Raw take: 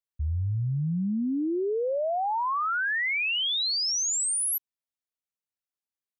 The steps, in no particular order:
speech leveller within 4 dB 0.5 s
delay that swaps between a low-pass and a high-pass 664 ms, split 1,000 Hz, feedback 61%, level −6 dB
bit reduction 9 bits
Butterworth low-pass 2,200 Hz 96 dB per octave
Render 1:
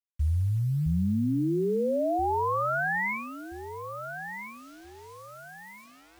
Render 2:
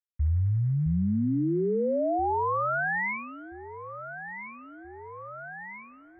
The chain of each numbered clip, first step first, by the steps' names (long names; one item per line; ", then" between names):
Butterworth low-pass, then speech leveller, then delay that swaps between a low-pass and a high-pass, then bit reduction
delay that swaps between a low-pass and a high-pass, then speech leveller, then bit reduction, then Butterworth low-pass